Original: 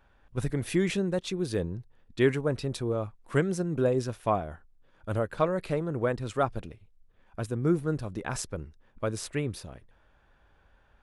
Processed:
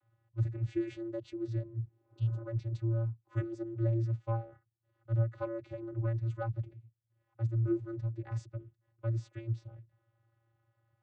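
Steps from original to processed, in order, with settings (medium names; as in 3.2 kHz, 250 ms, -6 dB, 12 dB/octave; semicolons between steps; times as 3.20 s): spectral replace 1.86–2.40 s, 240–3200 Hz both; vocoder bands 16, square 114 Hz; trim -3.5 dB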